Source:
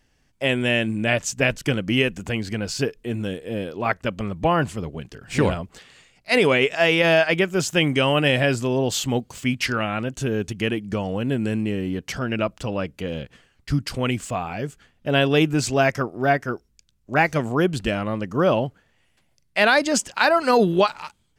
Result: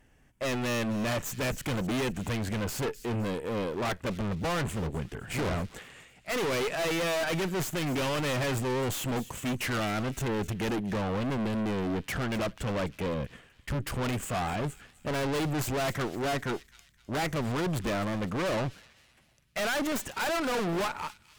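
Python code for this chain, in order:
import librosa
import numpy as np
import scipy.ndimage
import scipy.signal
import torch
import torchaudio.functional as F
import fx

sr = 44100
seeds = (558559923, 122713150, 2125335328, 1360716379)

y = fx.tracing_dist(x, sr, depth_ms=0.092)
y = fx.peak_eq(y, sr, hz=4700.0, db=-13.5, octaves=0.93)
y = fx.tube_stage(y, sr, drive_db=32.0, bias=0.6)
y = np.clip(10.0 ** (34.0 / 20.0) * y, -1.0, 1.0) / 10.0 ** (34.0 / 20.0)
y = fx.echo_wet_highpass(y, sr, ms=256, feedback_pct=41, hz=2600.0, wet_db=-14.0)
y = y * librosa.db_to_amplitude(6.0)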